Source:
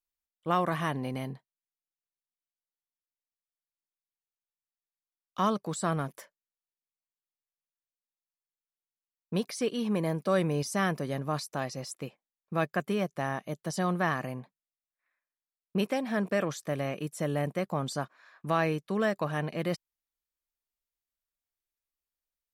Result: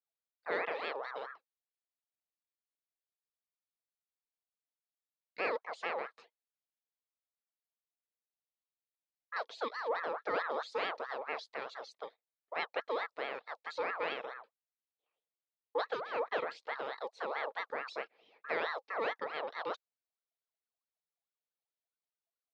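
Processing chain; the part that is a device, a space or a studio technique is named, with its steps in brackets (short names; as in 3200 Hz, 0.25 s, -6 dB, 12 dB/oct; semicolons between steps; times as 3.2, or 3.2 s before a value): voice changer toy (ring modulator with a swept carrier 1100 Hz, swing 40%, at 4.6 Hz; speaker cabinet 450–4400 Hz, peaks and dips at 470 Hz +10 dB, 660 Hz +4 dB, 970 Hz -3 dB, 1500 Hz -4 dB, 2900 Hz -4 dB, 4100 Hz +5 dB); gain -4.5 dB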